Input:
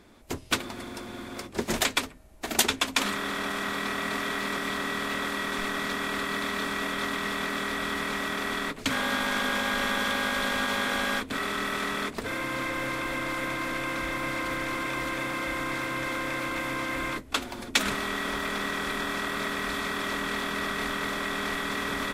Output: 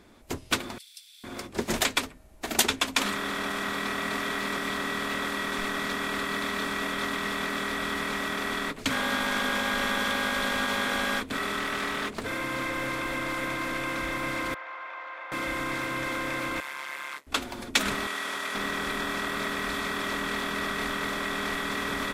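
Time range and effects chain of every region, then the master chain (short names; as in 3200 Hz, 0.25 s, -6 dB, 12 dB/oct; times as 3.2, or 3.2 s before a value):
0.78–1.24 inverse Chebyshev high-pass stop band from 570 Hz, stop band 80 dB + notch 6700 Hz, Q 6.5
11.59–12.23 notches 50/100/150/200/250/300/350/400/450 Hz + Doppler distortion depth 0.18 ms
14.54–15.32 HPF 680 Hz 24 dB/oct + tape spacing loss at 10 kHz 44 dB
16.6–17.27 HPF 900 Hz + AM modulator 140 Hz, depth 75%
18.07–18.55 CVSD 64 kbps + HPF 710 Hz 6 dB/oct
whole clip: dry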